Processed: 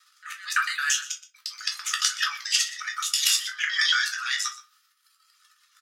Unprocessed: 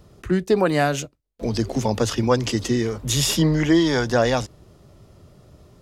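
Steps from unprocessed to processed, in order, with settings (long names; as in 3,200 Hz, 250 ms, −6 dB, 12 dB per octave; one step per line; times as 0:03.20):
reversed piece by piece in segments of 112 ms
reverb reduction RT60 1.3 s
transient designer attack +3 dB, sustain −2 dB
output level in coarse steps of 14 dB
transient designer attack −10 dB, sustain +12 dB
Chebyshev high-pass with heavy ripple 1,200 Hz, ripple 3 dB
single-tap delay 122 ms −17 dB
rectangular room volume 120 cubic metres, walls furnished, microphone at 1.4 metres
level +7 dB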